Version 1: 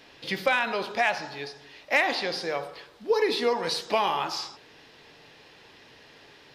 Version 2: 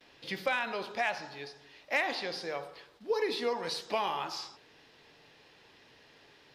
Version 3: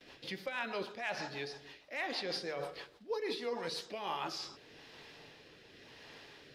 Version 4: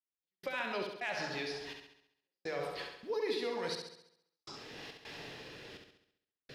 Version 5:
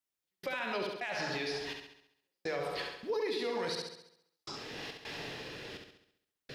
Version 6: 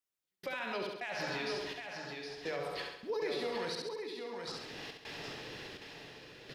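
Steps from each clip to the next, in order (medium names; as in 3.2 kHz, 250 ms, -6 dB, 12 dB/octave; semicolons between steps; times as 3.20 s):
gate with hold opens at -45 dBFS; trim -7 dB
reverse; compression 6:1, threshold -39 dBFS, peak gain reduction 14 dB; reverse; rotary cabinet horn 6.3 Hz, later 0.9 Hz, at 3.43 s; trim +6 dB
compression 2:1, threshold -47 dBFS, peak gain reduction 8.5 dB; trance gate "...xxx.xxxxx.." 104 bpm -60 dB; on a send: flutter echo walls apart 11.6 m, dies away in 0.72 s; on the sum: trim +7 dB
peak limiter -31.5 dBFS, peak gain reduction 8 dB; trim +5 dB
delay 765 ms -5.5 dB; trim -2.5 dB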